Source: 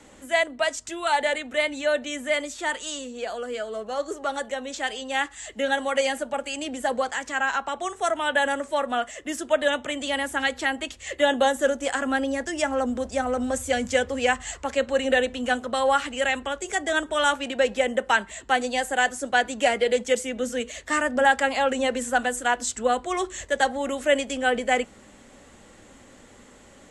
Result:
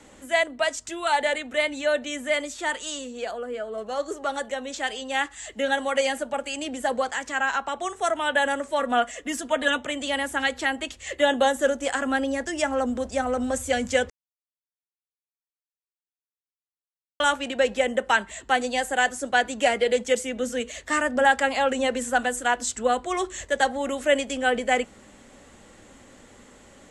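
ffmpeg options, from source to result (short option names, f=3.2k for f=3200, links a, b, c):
-filter_complex "[0:a]asettb=1/sr,asplit=3[a][b][c];[a]atrim=end=3.314[d];[b]atrim=start=3.31:end=3.78,asetpts=PTS-STARTPTS,afade=t=in:d=0.004:c=qsin,afade=t=out:st=0.466:d=0.004:c=qsin,equalizer=f=5.7k:w=0.54:g=-12.5[e];[c]atrim=start=3.776[f];[d][e]acrossfade=d=0.004:c1=hsin:c2=qsin[g];[g][f]acrossfade=d=0.004:c1=qsin:c2=hsin,asettb=1/sr,asplit=3[h][i][j];[h]atrim=end=8.794[k];[i]atrim=start=8.79:end=9.78,asetpts=PTS-STARTPTS,afade=t=in:d=0.004:c=qsin,afade=t=out:st=0.986:d=0.004:c=qsin,aecho=1:1:4.2:0.65,atrim=end_sample=43659[l];[j]atrim=start=9.776[m];[k][l]acrossfade=d=0.004:c1=hsin:c2=qsin[n];[n][m]acrossfade=d=0.004:c1=qsin:c2=hsin,asplit=3[o][p][q];[o]atrim=end=14.1,asetpts=PTS-STARTPTS,afade=t=out:st=14.096:d=0.004:c=hsin[r];[p]atrim=start=14.1:end=17.2,asetpts=PTS-STARTPTS,volume=0[s];[q]atrim=start=17.2,asetpts=PTS-STARTPTS,afade=t=in:d=0.004:c=hsin[t];[r][s][t]concat=n=3:v=0:a=1"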